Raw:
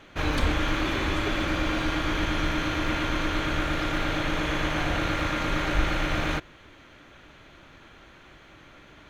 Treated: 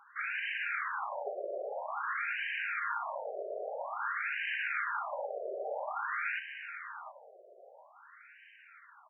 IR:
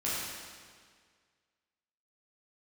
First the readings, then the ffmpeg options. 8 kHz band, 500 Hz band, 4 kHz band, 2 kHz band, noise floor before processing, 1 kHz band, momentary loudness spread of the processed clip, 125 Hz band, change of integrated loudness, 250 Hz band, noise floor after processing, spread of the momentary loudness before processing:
under -35 dB, -6.5 dB, -17.0 dB, -5.0 dB, -52 dBFS, -6.0 dB, 22 LU, under -40 dB, -9.0 dB, under -30 dB, -59 dBFS, 1 LU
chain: -af "aecho=1:1:722|1444|2166|2888:0.335|0.107|0.0343|0.011,afftfilt=real='re*between(b*sr/1024,510*pow(2200/510,0.5+0.5*sin(2*PI*0.5*pts/sr))/1.41,510*pow(2200/510,0.5+0.5*sin(2*PI*0.5*pts/sr))*1.41)':imag='im*between(b*sr/1024,510*pow(2200/510,0.5+0.5*sin(2*PI*0.5*pts/sr))/1.41,510*pow(2200/510,0.5+0.5*sin(2*PI*0.5*pts/sr))*1.41)':win_size=1024:overlap=0.75,volume=0.841"

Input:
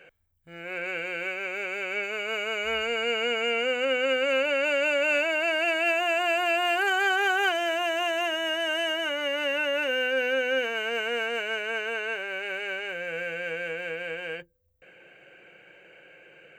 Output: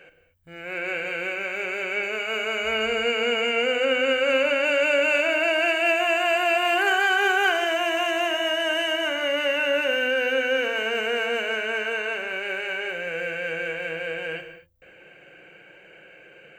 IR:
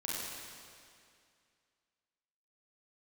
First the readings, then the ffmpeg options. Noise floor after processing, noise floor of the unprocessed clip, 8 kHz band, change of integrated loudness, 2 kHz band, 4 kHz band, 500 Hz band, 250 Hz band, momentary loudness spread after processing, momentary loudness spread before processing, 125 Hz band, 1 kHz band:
-51 dBFS, -55 dBFS, +3.0 dB, +3.5 dB, +3.5 dB, +3.0 dB, +3.5 dB, +4.5 dB, 9 LU, 8 LU, no reading, +3.0 dB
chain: -filter_complex "[0:a]asplit=2[s0][s1];[1:a]atrim=start_sample=2205,afade=t=out:st=0.3:d=0.01,atrim=end_sample=13671,lowshelf=f=190:g=7[s2];[s1][s2]afir=irnorm=-1:irlink=0,volume=0.501[s3];[s0][s3]amix=inputs=2:normalize=0"

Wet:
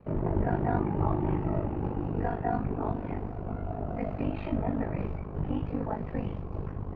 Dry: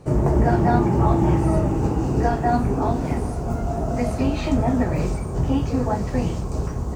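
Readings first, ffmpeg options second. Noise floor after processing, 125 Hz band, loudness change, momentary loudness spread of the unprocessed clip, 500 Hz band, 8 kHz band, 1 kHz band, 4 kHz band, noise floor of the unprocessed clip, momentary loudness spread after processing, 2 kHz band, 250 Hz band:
-38 dBFS, -10.5 dB, -10.5 dB, 8 LU, -10.0 dB, under -40 dB, -10.0 dB, under -15 dB, -28 dBFS, 8 LU, -10.0 dB, -10.0 dB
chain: -af "bandreject=f=96.23:t=h:w=4,bandreject=f=192.46:t=h:w=4,aeval=exprs='val(0)*sin(2*PI*25*n/s)':c=same,acrusher=bits=9:mode=log:mix=0:aa=0.000001,lowpass=f=2800:w=0.5412,lowpass=f=2800:w=1.3066,volume=0.447"

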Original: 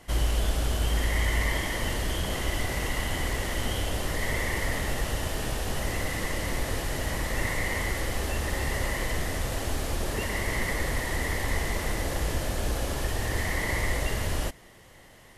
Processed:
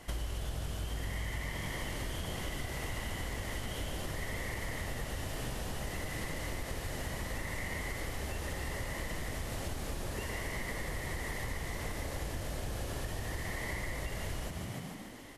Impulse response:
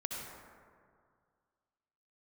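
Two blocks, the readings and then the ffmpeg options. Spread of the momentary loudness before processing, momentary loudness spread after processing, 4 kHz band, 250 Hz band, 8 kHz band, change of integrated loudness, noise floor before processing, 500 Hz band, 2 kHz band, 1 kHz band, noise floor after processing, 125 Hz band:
3 LU, 1 LU, -9.5 dB, -8.0 dB, -9.5 dB, -9.5 dB, -52 dBFS, -9.0 dB, -9.5 dB, -9.0 dB, -42 dBFS, -8.5 dB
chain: -filter_complex "[0:a]asplit=2[s0][s1];[s1]asplit=7[s2][s3][s4][s5][s6][s7][s8];[s2]adelay=147,afreqshift=43,volume=0.398[s9];[s3]adelay=294,afreqshift=86,volume=0.226[s10];[s4]adelay=441,afreqshift=129,volume=0.129[s11];[s5]adelay=588,afreqshift=172,volume=0.0741[s12];[s6]adelay=735,afreqshift=215,volume=0.0422[s13];[s7]adelay=882,afreqshift=258,volume=0.024[s14];[s8]adelay=1029,afreqshift=301,volume=0.0136[s15];[s9][s10][s11][s12][s13][s14][s15]amix=inputs=7:normalize=0[s16];[s0][s16]amix=inputs=2:normalize=0,acompressor=threshold=0.0178:ratio=6"

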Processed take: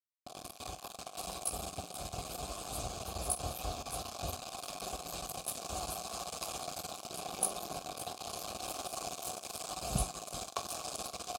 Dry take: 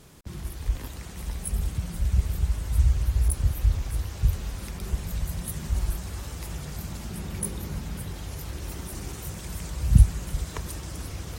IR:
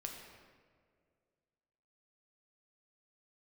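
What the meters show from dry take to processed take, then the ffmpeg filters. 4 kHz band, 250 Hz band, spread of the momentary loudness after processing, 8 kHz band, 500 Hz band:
+1.5 dB, -11.0 dB, 7 LU, 0.0 dB, +1.5 dB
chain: -filter_complex "[0:a]lowshelf=f=94:g=4.5,bandreject=f=5700:w=9.7,asplit=2[s0][s1];[s1]acompressor=threshold=0.0251:ratio=6,volume=0.891[s2];[s0][s2]amix=inputs=2:normalize=0,flanger=delay=5.5:depth=9.9:regen=-41:speed=0.4:shape=sinusoidal,aeval=exprs='sgn(val(0))*max(abs(val(0))-0.0224,0)':c=same,asplit=3[s3][s4][s5];[s3]bandpass=f=730:t=q:w=8,volume=1[s6];[s4]bandpass=f=1090:t=q:w=8,volume=0.501[s7];[s5]bandpass=f=2440:t=q:w=8,volume=0.355[s8];[s6][s7][s8]amix=inputs=3:normalize=0,aexciter=amount=5.8:drive=7.8:freq=3800,aecho=1:1:22|46:0.133|0.188,volume=5.96"

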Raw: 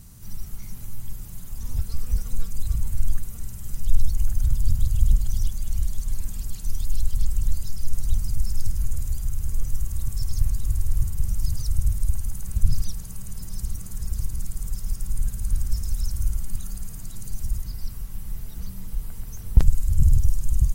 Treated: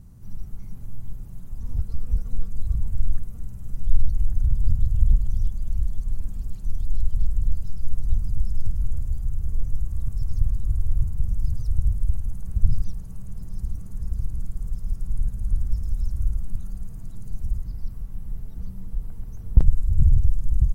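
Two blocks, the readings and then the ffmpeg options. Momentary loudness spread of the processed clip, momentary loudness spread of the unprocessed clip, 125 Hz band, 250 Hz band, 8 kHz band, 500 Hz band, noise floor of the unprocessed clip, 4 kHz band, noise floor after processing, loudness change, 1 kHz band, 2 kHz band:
16 LU, 14 LU, +0.5 dB, 0.0 dB, -17.0 dB, -1.5 dB, -36 dBFS, under -15 dB, -36 dBFS, +0.5 dB, no reading, under -10 dB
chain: -af "tiltshelf=f=1400:g=9,volume=0.376"

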